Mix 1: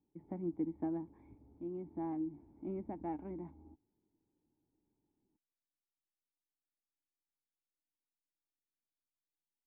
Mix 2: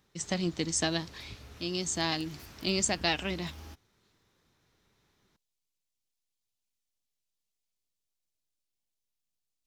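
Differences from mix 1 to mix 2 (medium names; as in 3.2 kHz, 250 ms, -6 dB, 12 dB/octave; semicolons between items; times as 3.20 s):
speech: add peaking EQ 1.5 kHz -14 dB 1.2 oct; master: remove cascade formant filter u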